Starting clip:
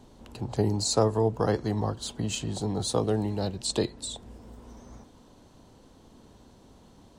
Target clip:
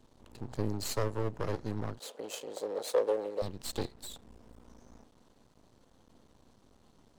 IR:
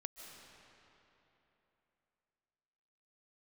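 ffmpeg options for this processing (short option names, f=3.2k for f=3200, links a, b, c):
-filter_complex "[0:a]aeval=exprs='max(val(0),0)':c=same,asettb=1/sr,asplit=3[a][b][c];[a]atrim=end=1.994[d];[b]atrim=start=1.99:end=3.42,asetpts=PTS-STARTPTS,afade=t=in:d=0.004:c=qsin,afade=t=out:st=1.426:d=0.004:c=qsin,highpass=f=510:t=q:w=4.9[e];[c]atrim=start=3.416[f];[d][e]acrossfade=d=0.004:c1=hsin:c2=qsin[g];[g][f]acrossfade=d=0.004:c1=qsin:c2=hsin,volume=-5dB"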